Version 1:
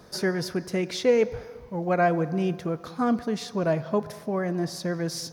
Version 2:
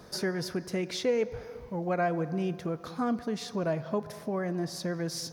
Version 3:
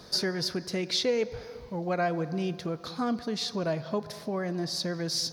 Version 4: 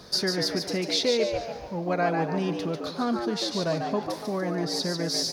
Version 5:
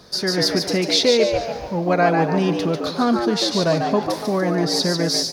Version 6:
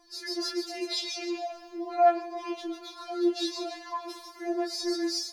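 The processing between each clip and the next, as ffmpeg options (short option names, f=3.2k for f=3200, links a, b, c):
-af "acompressor=threshold=-36dB:ratio=1.5"
-af "equalizer=f=4.3k:w=1.5:g=11"
-filter_complex "[0:a]asplit=6[a][b][c][d][e][f];[b]adelay=145,afreqshift=110,volume=-5dB[g];[c]adelay=290,afreqshift=220,volume=-13.4dB[h];[d]adelay=435,afreqshift=330,volume=-21.8dB[i];[e]adelay=580,afreqshift=440,volume=-30.2dB[j];[f]adelay=725,afreqshift=550,volume=-38.6dB[k];[a][g][h][i][j][k]amix=inputs=6:normalize=0,volume=2dB"
-af "dynaudnorm=f=110:g=5:m=8.5dB"
-af "flanger=delay=15.5:depth=6.9:speed=0.52,afftfilt=real='re*4*eq(mod(b,16),0)':imag='im*4*eq(mod(b,16),0)':win_size=2048:overlap=0.75,volume=-7.5dB"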